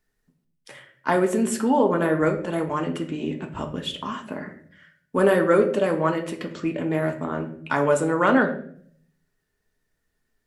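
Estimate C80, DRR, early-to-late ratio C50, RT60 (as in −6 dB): 14.0 dB, 3.0 dB, 11.0 dB, 0.55 s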